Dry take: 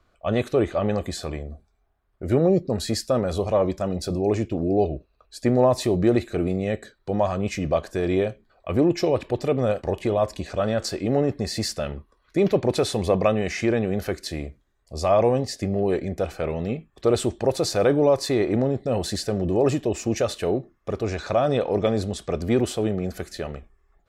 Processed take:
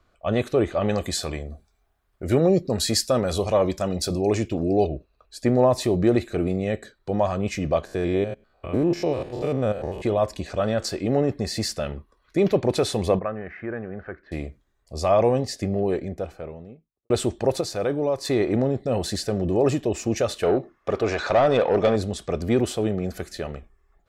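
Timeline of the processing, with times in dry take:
0:00.81–0:04.87: high-shelf EQ 2,100 Hz +8 dB
0:07.85–0:10.04: spectrum averaged block by block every 100 ms
0:13.19–0:14.32: transistor ladder low-pass 1,800 Hz, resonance 55%
0:15.56–0:17.10: fade out and dull
0:17.61–0:18.25: clip gain −5.5 dB
0:20.43–0:21.96: mid-hump overdrive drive 16 dB, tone 2,200 Hz, clips at −9.5 dBFS

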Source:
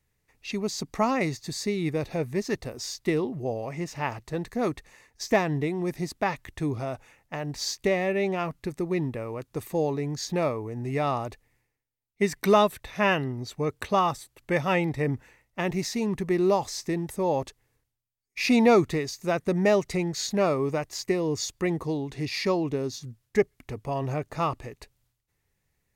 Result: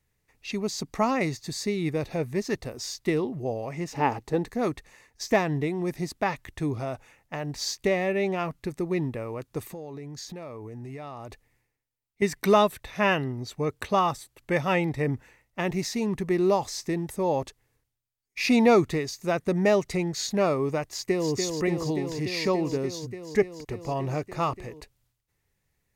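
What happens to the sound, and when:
0:03.92–0:04.51: hollow resonant body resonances 280/430/800 Hz, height 12 dB → 8 dB, ringing for 30 ms
0:09.62–0:12.22: downward compressor 12 to 1, threshold −35 dBFS
0:20.88–0:21.32: delay throw 290 ms, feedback 85%, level −5 dB

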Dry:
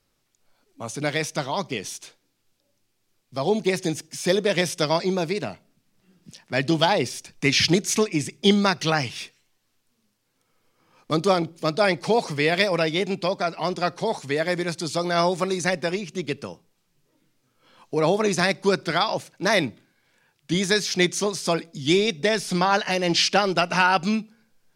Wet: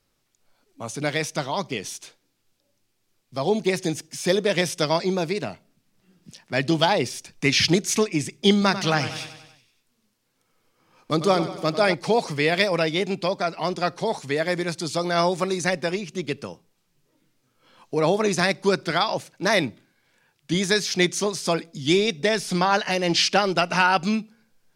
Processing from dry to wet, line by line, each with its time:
0:08.52–0:11.94: repeating echo 95 ms, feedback 56%, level −12 dB

